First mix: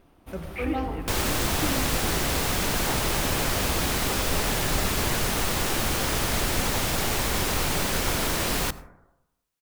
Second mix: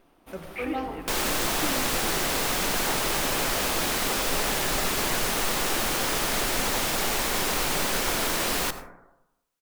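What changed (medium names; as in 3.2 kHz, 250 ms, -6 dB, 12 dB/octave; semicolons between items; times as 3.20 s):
second sound: send +7.0 dB; master: add peaking EQ 72 Hz -15 dB 2 oct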